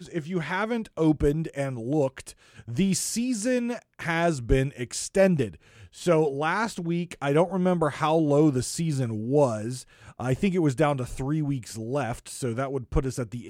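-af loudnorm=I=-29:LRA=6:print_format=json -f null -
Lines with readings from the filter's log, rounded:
"input_i" : "-26.6",
"input_tp" : "-8.7",
"input_lra" : "3.8",
"input_thresh" : "-36.8",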